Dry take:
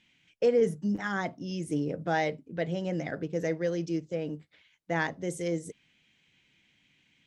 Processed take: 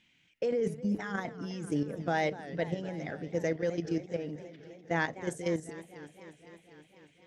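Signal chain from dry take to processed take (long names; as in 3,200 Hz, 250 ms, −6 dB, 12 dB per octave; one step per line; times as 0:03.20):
output level in coarse steps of 10 dB
feedback echo with a swinging delay time 251 ms, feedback 74%, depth 192 cents, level −16 dB
level +1.5 dB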